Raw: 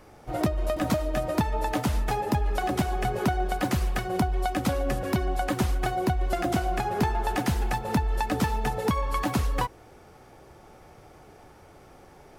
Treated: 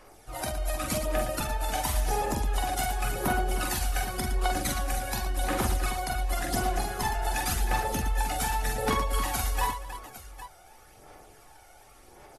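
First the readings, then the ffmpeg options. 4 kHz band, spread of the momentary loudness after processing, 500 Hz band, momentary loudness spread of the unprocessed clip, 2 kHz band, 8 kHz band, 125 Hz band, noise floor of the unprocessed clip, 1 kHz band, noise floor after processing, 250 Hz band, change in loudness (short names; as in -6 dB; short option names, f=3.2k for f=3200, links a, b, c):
+2.5 dB, 6 LU, -4.0 dB, 2 LU, +0.5 dB, +7.5 dB, -4.5 dB, -52 dBFS, -1.5 dB, -54 dBFS, -8.0 dB, -2.0 dB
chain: -filter_complex "[0:a]aemphasis=mode=production:type=50fm,asplit=2[a][b];[b]volume=21dB,asoftclip=hard,volume=-21dB,volume=-10dB[c];[a][c]amix=inputs=2:normalize=0,aeval=exprs='0.376*(cos(1*acos(clip(val(0)/0.376,-1,1)))-cos(1*PI/2))+0.00596*(cos(7*acos(clip(val(0)/0.376,-1,1)))-cos(7*PI/2))':c=same,aphaser=in_gain=1:out_gain=1:delay=1.4:decay=0.62:speed=0.9:type=sinusoidal,equalizer=f=140:t=o:w=2.9:g=-12,asplit=2[d][e];[e]aecho=0:1:44|53|114|232|313|807:0.631|0.251|0.355|0.119|0.266|0.2[f];[d][f]amix=inputs=2:normalize=0,volume=-8dB" -ar 44100 -c:a aac -b:a 32k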